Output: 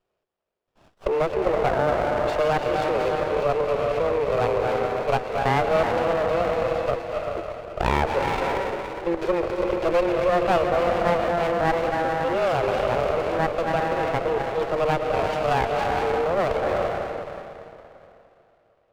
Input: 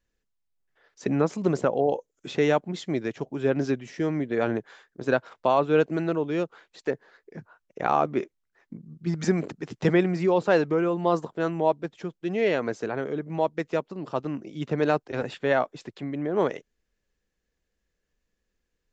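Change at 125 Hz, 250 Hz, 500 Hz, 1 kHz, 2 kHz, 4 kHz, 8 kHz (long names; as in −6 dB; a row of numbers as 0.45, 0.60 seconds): +0.5 dB, −3.5 dB, +4.5 dB, +7.0 dB, +4.5 dB, +6.0 dB, can't be measured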